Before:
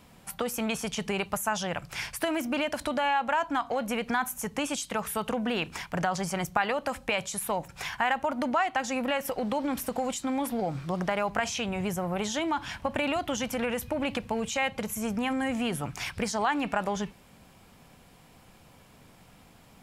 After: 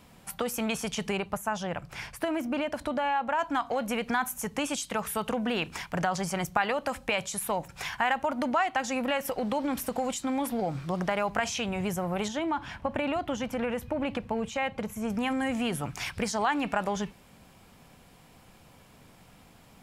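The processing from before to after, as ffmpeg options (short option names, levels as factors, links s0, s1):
-filter_complex "[0:a]asettb=1/sr,asplit=3[s0][s1][s2];[s0]atrim=end=1.174[s3];[s1]atrim=start=1.17:end=3.39,asetpts=PTS-STARTPTS,afade=t=in:d=0.004:c=qsin,afade=t=out:st=2.216:d=0.004:c=qsin,highshelf=f=2000:g=-8.5[s4];[s2]atrim=start=3.386[s5];[s3][s4]acrossfade=d=0.004:c1=hsin:c2=qsin[s6];[s6][s5]acrossfade=d=0.004:c1=qsin:c2=hsin,asettb=1/sr,asplit=3[s7][s8][s9];[s7]atrim=end=12.284[s10];[s8]atrim=start=12.28:end=15.1,asetpts=PTS-STARTPTS,afade=t=in:d=0.004:c=qsin,afade=t=out:st=2.816:d=0.004:c=qsin,highshelf=f=3000:g=-11[s11];[s9]atrim=start=15.096[s12];[s10][s11]acrossfade=d=0.004:c1=hsin:c2=qsin[s13];[s13][s12]acrossfade=d=0.004:c1=qsin:c2=hsin"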